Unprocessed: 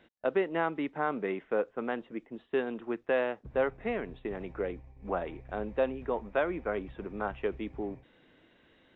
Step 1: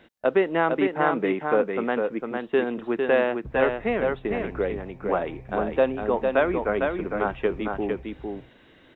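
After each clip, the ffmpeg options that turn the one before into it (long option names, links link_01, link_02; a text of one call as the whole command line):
ffmpeg -i in.wav -af "aecho=1:1:454:0.596,volume=7.5dB" out.wav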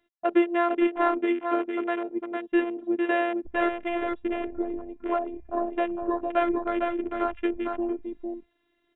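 ffmpeg -i in.wav -af "afftfilt=real='hypot(re,im)*cos(PI*b)':imag='0':win_size=512:overlap=0.75,afwtdn=0.0158,volume=1.5dB" out.wav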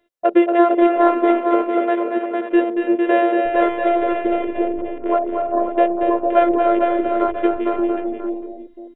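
ffmpeg -i in.wav -filter_complex "[0:a]equalizer=frequency=520:width_type=o:width=0.61:gain=13.5,asplit=2[link_01][link_02];[link_02]aecho=0:1:232|280|334|535:0.501|0.251|0.126|0.299[link_03];[link_01][link_03]amix=inputs=2:normalize=0,volume=4dB" out.wav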